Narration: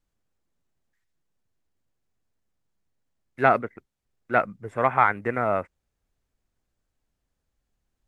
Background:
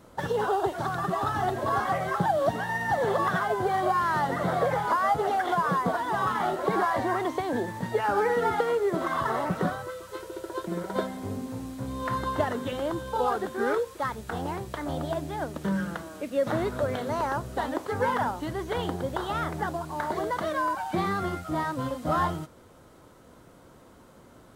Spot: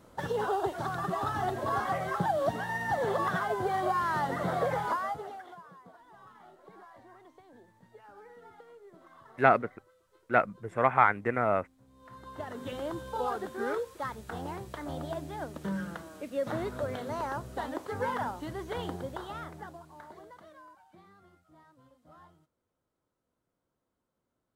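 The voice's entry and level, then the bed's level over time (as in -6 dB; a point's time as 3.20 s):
6.00 s, -3.0 dB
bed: 4.87 s -4 dB
5.71 s -27.5 dB
11.88 s -27.5 dB
12.70 s -6 dB
18.95 s -6 dB
21.04 s -30.5 dB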